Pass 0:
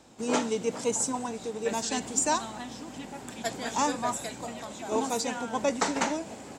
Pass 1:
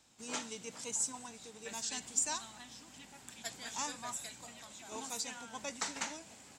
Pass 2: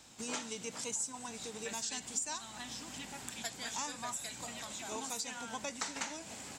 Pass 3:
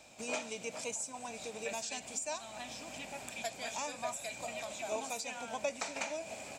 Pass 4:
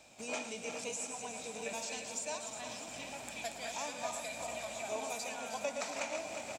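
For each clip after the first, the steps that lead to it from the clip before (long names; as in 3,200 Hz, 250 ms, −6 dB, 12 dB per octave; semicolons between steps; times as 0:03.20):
guitar amp tone stack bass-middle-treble 5-5-5; level +1 dB
downward compressor 2.5 to 1, threshold −50 dBFS, peak gain reduction 15 dB; level +9.5 dB
hollow resonant body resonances 620/2,400 Hz, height 15 dB, ringing for 20 ms; level −3 dB
feedback delay that plays each chunk backwards 179 ms, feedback 74%, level −7 dB; single-tap delay 113 ms −11.5 dB; level −2 dB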